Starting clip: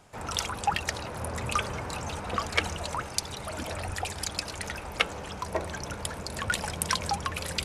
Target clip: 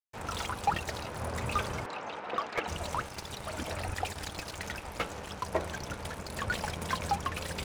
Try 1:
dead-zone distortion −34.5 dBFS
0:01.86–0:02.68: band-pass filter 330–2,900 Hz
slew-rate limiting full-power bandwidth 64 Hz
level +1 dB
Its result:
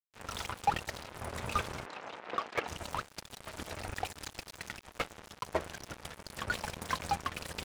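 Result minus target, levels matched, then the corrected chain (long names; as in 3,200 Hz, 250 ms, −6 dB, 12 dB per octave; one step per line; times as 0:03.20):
dead-zone distortion: distortion +9 dB
dead-zone distortion −44 dBFS
0:01.86–0:02.68: band-pass filter 330–2,900 Hz
slew-rate limiting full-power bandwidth 64 Hz
level +1 dB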